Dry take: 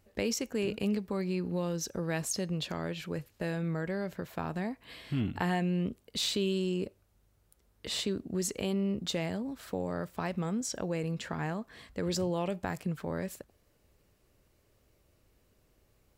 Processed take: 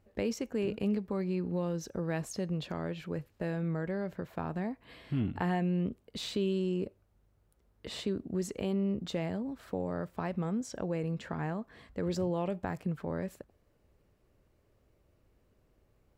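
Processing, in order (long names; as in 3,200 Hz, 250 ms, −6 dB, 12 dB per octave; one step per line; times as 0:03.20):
high-shelf EQ 2,600 Hz −11.5 dB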